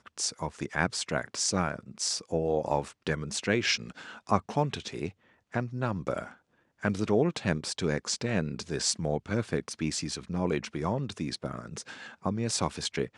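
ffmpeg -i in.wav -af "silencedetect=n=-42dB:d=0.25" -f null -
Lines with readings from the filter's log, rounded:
silence_start: 5.10
silence_end: 5.54 | silence_duration: 0.43
silence_start: 6.31
silence_end: 6.83 | silence_duration: 0.51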